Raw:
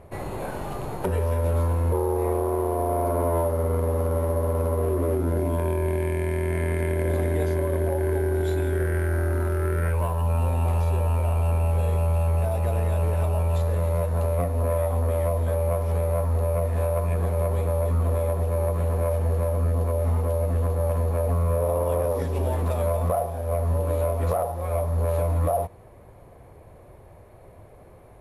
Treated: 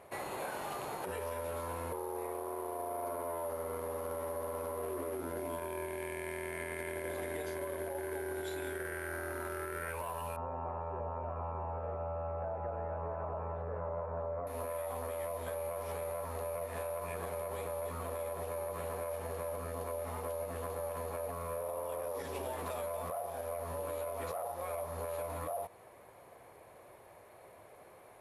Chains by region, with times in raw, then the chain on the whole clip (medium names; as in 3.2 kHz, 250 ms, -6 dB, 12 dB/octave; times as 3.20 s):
10.36–14.47 s: low-pass 1.4 kHz 24 dB/octave + delay 637 ms -5.5 dB
whole clip: high-pass 1 kHz 6 dB/octave; peak limiter -26.5 dBFS; compression 2.5:1, threshold -38 dBFS; trim +1 dB